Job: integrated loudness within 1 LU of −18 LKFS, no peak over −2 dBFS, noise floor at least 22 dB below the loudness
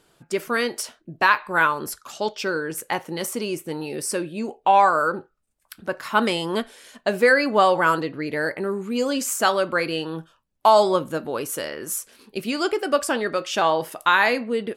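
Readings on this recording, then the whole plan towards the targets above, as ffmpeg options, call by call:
integrated loudness −22.5 LKFS; sample peak −3.5 dBFS; target loudness −18.0 LKFS
→ -af "volume=4.5dB,alimiter=limit=-2dB:level=0:latency=1"

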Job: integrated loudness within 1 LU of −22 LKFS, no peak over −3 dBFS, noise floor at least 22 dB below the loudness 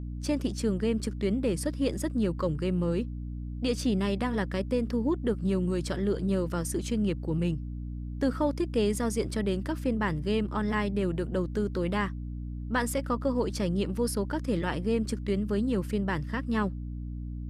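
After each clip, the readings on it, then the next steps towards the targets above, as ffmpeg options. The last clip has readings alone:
mains hum 60 Hz; hum harmonics up to 300 Hz; level of the hum −34 dBFS; integrated loudness −30.0 LKFS; sample peak −16.0 dBFS; target loudness −22.0 LKFS
→ -af "bandreject=frequency=60:width_type=h:width=4,bandreject=frequency=120:width_type=h:width=4,bandreject=frequency=180:width_type=h:width=4,bandreject=frequency=240:width_type=h:width=4,bandreject=frequency=300:width_type=h:width=4"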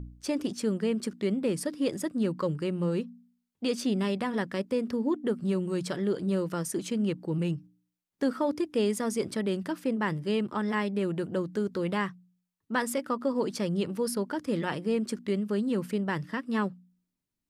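mains hum none found; integrated loudness −30.5 LKFS; sample peak −16.0 dBFS; target loudness −22.0 LKFS
→ -af "volume=8.5dB"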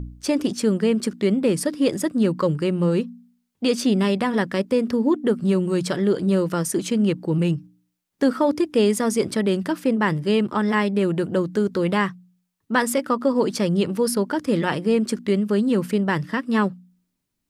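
integrated loudness −22.0 LKFS; sample peak −7.5 dBFS; background noise floor −76 dBFS

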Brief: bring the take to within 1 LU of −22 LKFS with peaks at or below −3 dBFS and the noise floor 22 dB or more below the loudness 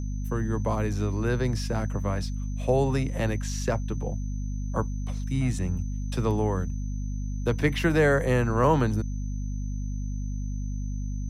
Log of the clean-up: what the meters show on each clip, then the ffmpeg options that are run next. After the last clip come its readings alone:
mains hum 50 Hz; hum harmonics up to 250 Hz; level of the hum −28 dBFS; interfering tone 6,100 Hz; level of the tone −52 dBFS; integrated loudness −28.0 LKFS; sample peak −10.0 dBFS; target loudness −22.0 LKFS
→ -af "bandreject=frequency=50:width_type=h:width=6,bandreject=frequency=100:width_type=h:width=6,bandreject=frequency=150:width_type=h:width=6,bandreject=frequency=200:width_type=h:width=6,bandreject=frequency=250:width_type=h:width=6"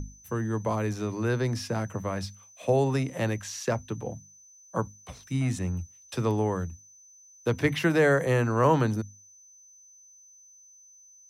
mains hum none found; interfering tone 6,100 Hz; level of the tone −52 dBFS
→ -af "bandreject=frequency=6100:width=30"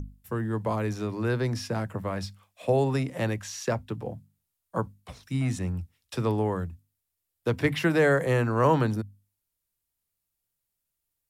interfering tone none found; integrated loudness −28.0 LKFS; sample peak −11.0 dBFS; target loudness −22.0 LKFS
→ -af "volume=6dB"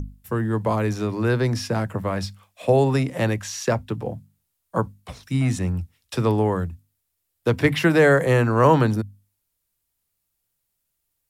integrated loudness −22.0 LKFS; sample peak −5.0 dBFS; background noise floor −77 dBFS

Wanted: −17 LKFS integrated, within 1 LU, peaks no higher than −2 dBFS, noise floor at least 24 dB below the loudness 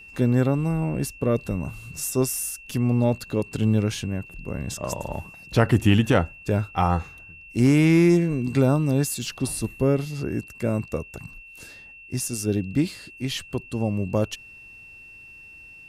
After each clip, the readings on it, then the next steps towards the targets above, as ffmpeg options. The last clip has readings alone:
interfering tone 2,700 Hz; level of the tone −43 dBFS; integrated loudness −24.0 LKFS; sample peak −7.0 dBFS; target loudness −17.0 LKFS
→ -af "bandreject=frequency=2700:width=30"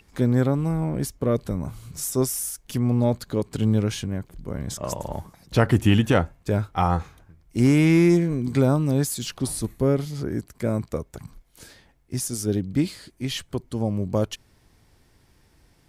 interfering tone none found; integrated loudness −24.0 LKFS; sample peak −7.0 dBFS; target loudness −17.0 LKFS
→ -af "volume=7dB,alimiter=limit=-2dB:level=0:latency=1"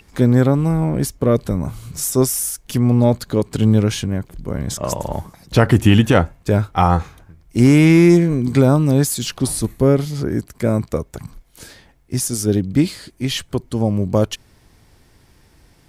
integrated loudness −17.5 LKFS; sample peak −2.0 dBFS; background noise floor −54 dBFS

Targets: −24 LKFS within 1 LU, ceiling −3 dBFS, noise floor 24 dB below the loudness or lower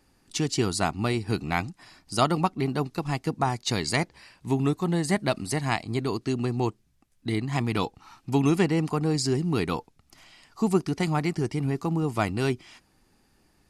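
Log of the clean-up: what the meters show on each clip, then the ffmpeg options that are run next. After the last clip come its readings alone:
integrated loudness −27.0 LKFS; sample peak −8.0 dBFS; target loudness −24.0 LKFS
→ -af "volume=3dB"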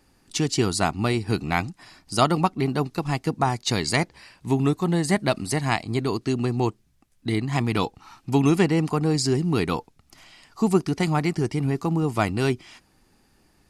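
integrated loudness −24.0 LKFS; sample peak −5.0 dBFS; background noise floor −62 dBFS

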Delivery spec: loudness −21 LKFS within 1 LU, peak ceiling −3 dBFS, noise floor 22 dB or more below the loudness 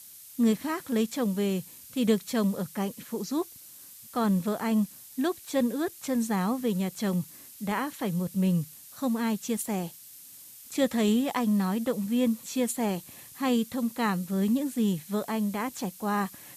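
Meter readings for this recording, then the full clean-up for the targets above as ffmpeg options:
background noise floor −49 dBFS; target noise floor −51 dBFS; integrated loudness −29.0 LKFS; sample peak −13.0 dBFS; target loudness −21.0 LKFS
→ -af "afftdn=noise_reduction=6:noise_floor=-49"
-af "volume=8dB"

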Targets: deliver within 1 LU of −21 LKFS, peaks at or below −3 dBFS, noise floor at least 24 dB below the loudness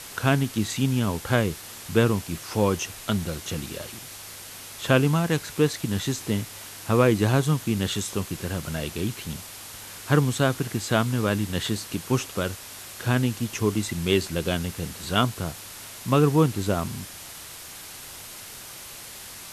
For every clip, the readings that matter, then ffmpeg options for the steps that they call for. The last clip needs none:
background noise floor −41 dBFS; target noise floor −50 dBFS; integrated loudness −25.5 LKFS; sample peak −4.5 dBFS; target loudness −21.0 LKFS
→ -af "afftdn=noise_reduction=9:noise_floor=-41"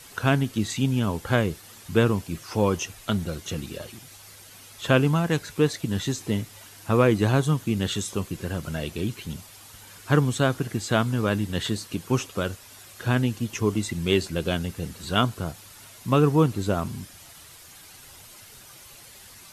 background noise floor −48 dBFS; target noise floor −50 dBFS
→ -af "afftdn=noise_reduction=6:noise_floor=-48"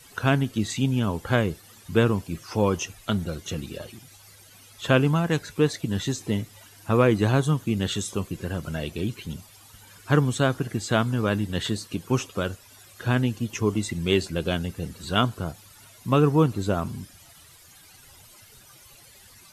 background noise floor −52 dBFS; integrated loudness −25.5 LKFS; sample peak −4.5 dBFS; target loudness −21.0 LKFS
→ -af "volume=4.5dB,alimiter=limit=-3dB:level=0:latency=1"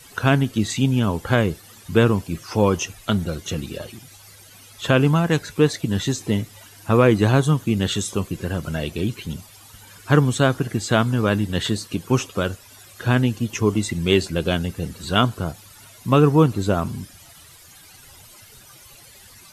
integrated loudness −21.0 LKFS; sample peak −3.0 dBFS; background noise floor −47 dBFS

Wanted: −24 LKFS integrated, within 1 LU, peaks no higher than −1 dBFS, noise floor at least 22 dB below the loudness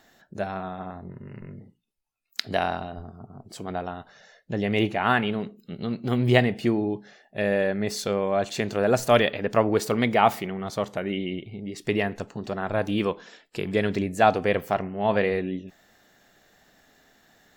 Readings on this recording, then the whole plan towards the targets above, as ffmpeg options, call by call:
integrated loudness −25.5 LKFS; sample peak −4.0 dBFS; target loudness −24.0 LKFS
→ -af "volume=1.5dB"

